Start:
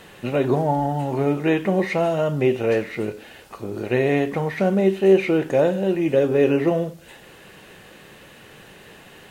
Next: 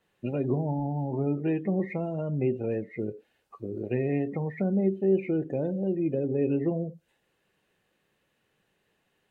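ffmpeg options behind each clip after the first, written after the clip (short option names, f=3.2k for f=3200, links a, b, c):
-filter_complex "[0:a]afftdn=nr=24:nf=-27,acrossover=split=360|3000[a][b][c];[b]acompressor=threshold=-32dB:ratio=8[d];[a][d][c]amix=inputs=3:normalize=0,adynamicequalizer=threshold=0.00631:dfrequency=1900:dqfactor=0.7:tfrequency=1900:tqfactor=0.7:attack=5:release=100:ratio=0.375:range=3:mode=cutabove:tftype=highshelf,volume=-4dB"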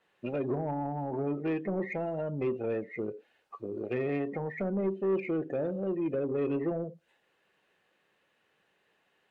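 -filter_complex "[0:a]asplit=2[a][b];[b]highpass=f=720:p=1,volume=17dB,asoftclip=type=tanh:threshold=-14dB[c];[a][c]amix=inputs=2:normalize=0,lowpass=f=2.5k:p=1,volume=-6dB,volume=-6.5dB"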